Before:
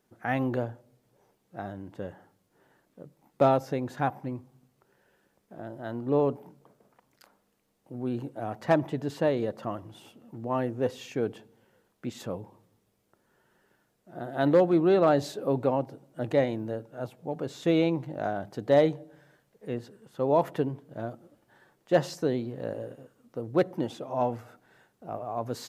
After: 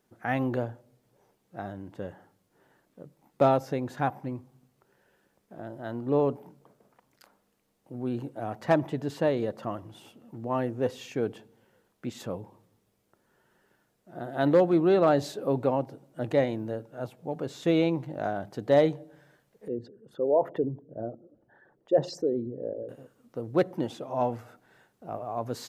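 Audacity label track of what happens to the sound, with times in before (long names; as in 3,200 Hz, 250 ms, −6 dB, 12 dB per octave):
19.680000	22.890000	spectral envelope exaggerated exponent 2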